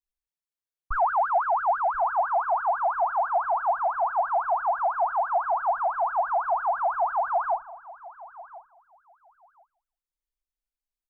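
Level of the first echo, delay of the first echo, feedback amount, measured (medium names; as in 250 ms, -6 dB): -18.5 dB, 1039 ms, 17%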